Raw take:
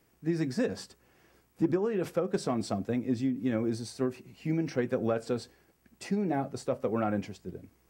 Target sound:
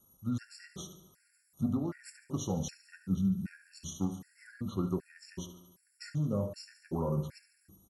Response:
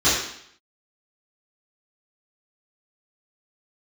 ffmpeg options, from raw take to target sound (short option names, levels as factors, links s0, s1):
-filter_complex "[0:a]asetrate=32097,aresample=44100,atempo=1.37395,aecho=1:1:73|146|219|292|365|438:0.211|0.123|0.0711|0.0412|0.0239|0.0139,asplit=2[s0][s1];[1:a]atrim=start_sample=2205,asetrate=70560,aresample=44100,lowpass=2100[s2];[s1][s2]afir=irnorm=-1:irlink=0,volume=0.0841[s3];[s0][s3]amix=inputs=2:normalize=0,aexciter=amount=4.7:drive=4.7:freq=5400,afftfilt=real='re*gt(sin(2*PI*1.3*pts/sr)*(1-2*mod(floor(b*sr/1024/1400),2)),0)':imag='im*gt(sin(2*PI*1.3*pts/sr)*(1-2*mod(floor(b*sr/1024/1400),2)),0)':win_size=1024:overlap=0.75,volume=0.596"